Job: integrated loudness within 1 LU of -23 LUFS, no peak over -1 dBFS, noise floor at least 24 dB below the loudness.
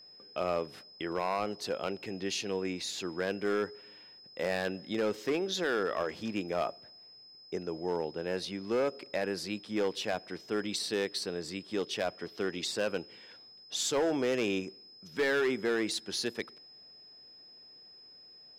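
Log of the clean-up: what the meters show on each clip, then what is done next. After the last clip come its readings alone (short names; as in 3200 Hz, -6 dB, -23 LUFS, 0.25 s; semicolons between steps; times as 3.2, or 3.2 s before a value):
clipped 1.0%; flat tops at -24.0 dBFS; steady tone 5100 Hz; tone level -52 dBFS; loudness -33.5 LUFS; peak -24.0 dBFS; loudness target -23.0 LUFS
-> clip repair -24 dBFS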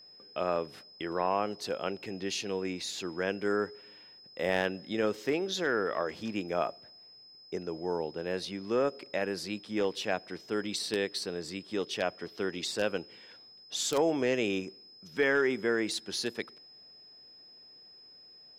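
clipped 0.0%; steady tone 5100 Hz; tone level -52 dBFS
-> notch 5100 Hz, Q 30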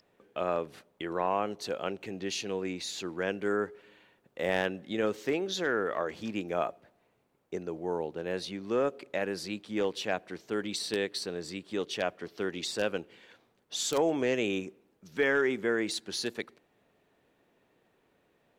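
steady tone none; loudness -32.5 LUFS; peak -15.0 dBFS; loudness target -23.0 LUFS
-> gain +9.5 dB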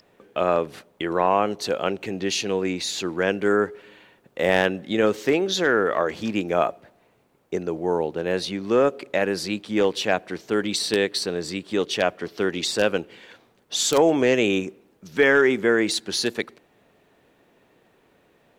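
loudness -23.0 LUFS; peak -5.5 dBFS; noise floor -62 dBFS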